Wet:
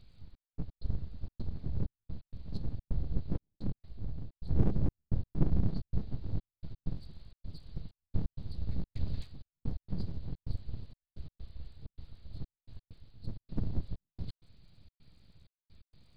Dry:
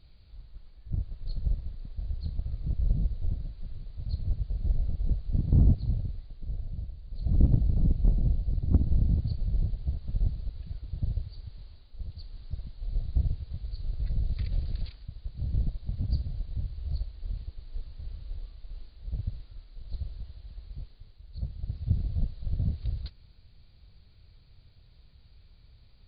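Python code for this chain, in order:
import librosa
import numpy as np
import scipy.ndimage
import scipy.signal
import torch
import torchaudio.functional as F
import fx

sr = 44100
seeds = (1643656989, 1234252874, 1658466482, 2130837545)

y = fx.stretch_vocoder_free(x, sr, factor=0.62)
y = np.abs(y)
y = fx.step_gate(y, sr, bpm=129, pattern='xxx..x.xxxx.x', floor_db=-60.0, edge_ms=4.5)
y = y * 10.0 ** (1.5 / 20.0)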